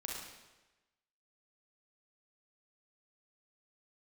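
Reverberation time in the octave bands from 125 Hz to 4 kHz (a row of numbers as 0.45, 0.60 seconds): 1.1, 1.0, 1.1, 1.1, 1.1, 1.0 seconds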